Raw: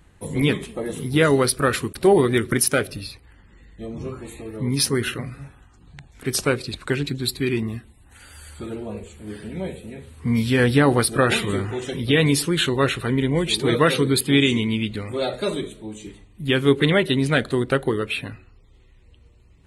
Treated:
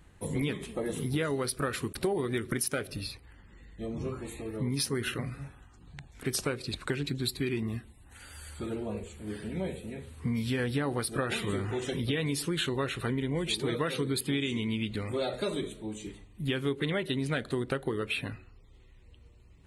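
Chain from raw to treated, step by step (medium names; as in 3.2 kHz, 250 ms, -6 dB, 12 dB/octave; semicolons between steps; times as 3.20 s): compression, threshold -24 dBFS, peak gain reduction 12.5 dB; trim -3.5 dB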